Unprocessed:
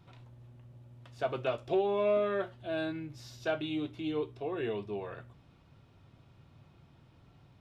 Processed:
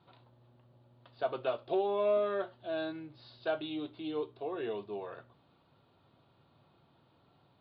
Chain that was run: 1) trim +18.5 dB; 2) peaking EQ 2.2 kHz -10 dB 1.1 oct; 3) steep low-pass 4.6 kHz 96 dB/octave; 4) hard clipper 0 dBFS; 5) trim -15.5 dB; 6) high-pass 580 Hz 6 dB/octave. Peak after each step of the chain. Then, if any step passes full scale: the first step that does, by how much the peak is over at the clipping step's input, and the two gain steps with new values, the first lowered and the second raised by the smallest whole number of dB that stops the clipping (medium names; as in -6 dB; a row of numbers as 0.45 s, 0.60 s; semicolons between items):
-2.0 dBFS, -2.0 dBFS, -2.0 dBFS, -2.0 dBFS, -17.5 dBFS, -20.5 dBFS; nothing clips